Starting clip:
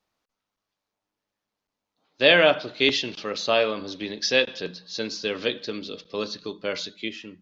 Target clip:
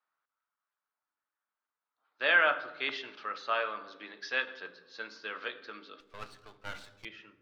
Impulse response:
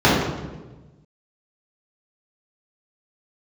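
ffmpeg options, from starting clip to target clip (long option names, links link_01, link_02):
-filter_complex "[0:a]lowpass=frequency=1400:width_type=q:width=3.1,aderivative,bandreject=frequency=297.4:width_type=h:width=4,bandreject=frequency=594.8:width_type=h:width=4,bandreject=frequency=892.2:width_type=h:width=4,bandreject=frequency=1189.6:width_type=h:width=4,bandreject=frequency=1487:width_type=h:width=4,bandreject=frequency=1784.4:width_type=h:width=4,bandreject=frequency=2081.8:width_type=h:width=4,bandreject=frequency=2379.2:width_type=h:width=4,bandreject=frequency=2676.6:width_type=h:width=4,bandreject=frequency=2974:width_type=h:width=4,bandreject=frequency=3271.4:width_type=h:width=4,bandreject=frequency=3568.8:width_type=h:width=4,bandreject=frequency=3866.2:width_type=h:width=4,bandreject=frequency=4163.6:width_type=h:width=4,bandreject=frequency=4461:width_type=h:width=4,bandreject=frequency=4758.4:width_type=h:width=4,bandreject=frequency=5055.8:width_type=h:width=4,bandreject=frequency=5353.2:width_type=h:width=4,bandreject=frequency=5650.6:width_type=h:width=4,bandreject=frequency=5948:width_type=h:width=4,bandreject=frequency=6245.4:width_type=h:width=4,bandreject=frequency=6542.8:width_type=h:width=4,bandreject=frequency=6840.2:width_type=h:width=4,bandreject=frequency=7137.6:width_type=h:width=4,bandreject=frequency=7435:width_type=h:width=4,bandreject=frequency=7732.4:width_type=h:width=4,bandreject=frequency=8029.8:width_type=h:width=4,bandreject=frequency=8327.2:width_type=h:width=4,bandreject=frequency=8624.6:width_type=h:width=4,bandreject=frequency=8922:width_type=h:width=4,bandreject=frequency=9219.4:width_type=h:width=4,bandreject=frequency=9516.8:width_type=h:width=4,bandreject=frequency=9814.2:width_type=h:width=4,bandreject=frequency=10111.6:width_type=h:width=4,bandreject=frequency=10409:width_type=h:width=4,asettb=1/sr,asplit=3[link_01][link_02][link_03];[link_01]atrim=end=6.004[link_04];[link_02]atrim=start=6:end=7.05,asetpts=PTS-STARTPTS,afade=type=in:duration=0.004:curve=qsin,afade=type=out:start_time=1.046:duration=0.004:curve=qsin,aeval=exprs='max(val(0),0)':channel_layout=same[link_05];[link_03]atrim=start=7.046[link_06];[link_04][link_05]acrossfade=duration=0.004:curve1=hsin:curve2=qsin[link_07];[link_07][link_06]acrossfade=duration=0.004:curve1=qsin:curve2=hsin,asplit=2[link_08][link_09];[1:a]atrim=start_sample=2205[link_10];[link_09][link_10]afir=irnorm=-1:irlink=0,volume=-38.5dB[link_11];[link_08][link_11]amix=inputs=2:normalize=0,volume=5.5dB"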